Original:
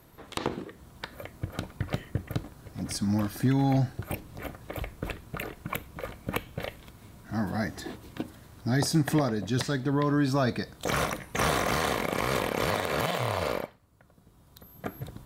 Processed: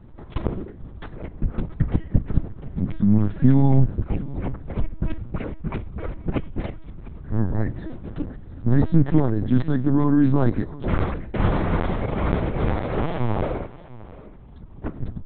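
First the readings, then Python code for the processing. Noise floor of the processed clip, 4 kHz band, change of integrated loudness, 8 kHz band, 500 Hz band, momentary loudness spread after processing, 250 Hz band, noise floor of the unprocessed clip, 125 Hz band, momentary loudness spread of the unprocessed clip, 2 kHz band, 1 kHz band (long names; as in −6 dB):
−42 dBFS, below −10 dB, +6.0 dB, below −40 dB, +2.5 dB, 17 LU, +8.0 dB, −57 dBFS, +9.0 dB, 16 LU, −4.0 dB, 0.0 dB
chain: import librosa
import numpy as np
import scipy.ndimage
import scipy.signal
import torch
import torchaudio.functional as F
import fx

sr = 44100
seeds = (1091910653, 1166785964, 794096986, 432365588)

y = fx.tracing_dist(x, sr, depth_ms=0.025)
y = fx.tilt_eq(y, sr, slope=-4.0)
y = fx.notch(y, sr, hz=540.0, q=12.0)
y = fx.echo_feedback(y, sr, ms=697, feedback_pct=22, wet_db=-18.5)
y = fx.lpc_vocoder(y, sr, seeds[0], excitation='pitch_kept', order=8)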